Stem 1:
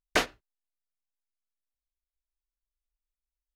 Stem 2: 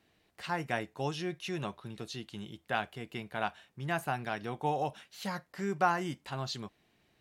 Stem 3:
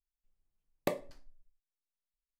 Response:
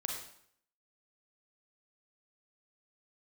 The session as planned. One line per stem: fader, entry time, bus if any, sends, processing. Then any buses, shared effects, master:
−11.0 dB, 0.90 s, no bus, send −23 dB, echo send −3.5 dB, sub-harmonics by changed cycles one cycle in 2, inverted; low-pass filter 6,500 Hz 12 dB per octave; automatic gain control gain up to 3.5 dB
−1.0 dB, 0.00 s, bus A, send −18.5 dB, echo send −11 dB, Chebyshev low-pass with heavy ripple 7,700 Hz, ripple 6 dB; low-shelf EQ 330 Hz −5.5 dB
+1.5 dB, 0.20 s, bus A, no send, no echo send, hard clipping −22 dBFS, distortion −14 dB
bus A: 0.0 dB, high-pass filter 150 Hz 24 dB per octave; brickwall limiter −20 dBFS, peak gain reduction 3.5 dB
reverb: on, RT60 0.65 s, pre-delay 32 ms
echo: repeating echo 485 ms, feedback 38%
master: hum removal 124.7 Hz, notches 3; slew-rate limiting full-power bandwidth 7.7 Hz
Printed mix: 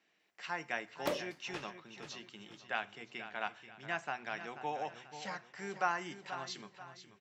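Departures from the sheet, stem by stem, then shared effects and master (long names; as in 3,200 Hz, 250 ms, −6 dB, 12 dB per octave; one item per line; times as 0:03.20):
stem 1 −11.0 dB → −18.5 dB
master: missing slew-rate limiting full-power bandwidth 7.7 Hz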